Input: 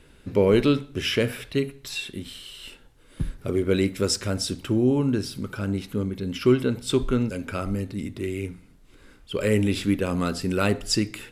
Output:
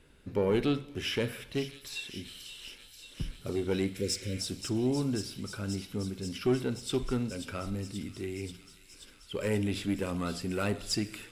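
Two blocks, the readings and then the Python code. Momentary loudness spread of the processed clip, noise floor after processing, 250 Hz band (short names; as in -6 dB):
14 LU, -56 dBFS, -8.5 dB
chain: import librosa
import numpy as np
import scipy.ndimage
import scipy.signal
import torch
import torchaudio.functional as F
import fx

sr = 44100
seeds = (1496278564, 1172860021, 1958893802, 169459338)

p1 = fx.diode_clip(x, sr, knee_db=-11.5)
p2 = fx.spec_repair(p1, sr, seeds[0], start_s=4.0, length_s=0.38, low_hz=560.0, high_hz=3300.0, source='before')
p3 = p2 + fx.echo_wet_highpass(p2, sr, ms=533, feedback_pct=80, hz=3600.0, wet_db=-7, dry=0)
p4 = fx.rev_schroeder(p3, sr, rt60_s=1.2, comb_ms=31, drr_db=18.5)
y = p4 * 10.0 ** (-7.0 / 20.0)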